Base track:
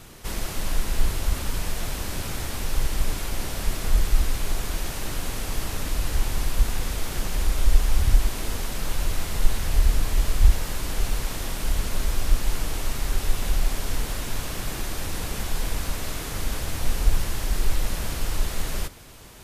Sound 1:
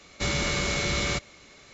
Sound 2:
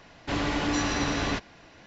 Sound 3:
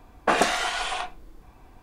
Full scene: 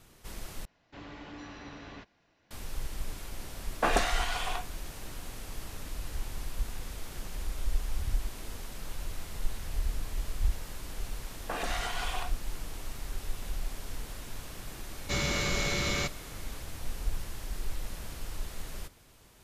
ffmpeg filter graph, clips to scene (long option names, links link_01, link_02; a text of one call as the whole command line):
ffmpeg -i bed.wav -i cue0.wav -i cue1.wav -i cue2.wav -filter_complex "[3:a]asplit=2[link_01][link_02];[0:a]volume=-12.5dB[link_03];[2:a]acrossover=split=4400[link_04][link_05];[link_05]acompressor=threshold=-51dB:ratio=4:attack=1:release=60[link_06];[link_04][link_06]amix=inputs=2:normalize=0[link_07];[link_02]alimiter=limit=-17.5dB:level=0:latency=1:release=134[link_08];[link_03]asplit=2[link_09][link_10];[link_09]atrim=end=0.654[link_11];[link_07]atrim=end=1.86,asetpts=PTS-STARTPTS,volume=-18dB[link_12];[link_10]atrim=start=2.506[link_13];[link_01]atrim=end=1.82,asetpts=PTS-STARTPTS,volume=-6dB,afade=type=in:duration=0.004:curve=hsin,afade=type=out:start_time=1.816:duration=0.004:curve=hsin,adelay=3550[link_14];[link_08]atrim=end=1.82,asetpts=PTS-STARTPTS,volume=-7dB,afade=type=in:duration=0.004:curve=hsin,afade=type=out:start_time=1.816:duration=0.004:curve=hsin,adelay=494802S[link_15];[1:a]atrim=end=1.73,asetpts=PTS-STARTPTS,volume=-3.5dB,afade=type=in:duration=0.004:curve=hsin,afade=type=out:start_time=1.726:duration=0.004:curve=hsin,adelay=14890[link_16];[link_11][link_12]acrossfade=duration=0.004:curve1=hsin:curve2=hsin[link_17];[link_17][link_13]acrossfade=duration=0.004:curve1=hsin:curve2=hsin[link_18];[link_18][link_14][link_15][link_16]amix=inputs=4:normalize=0" out.wav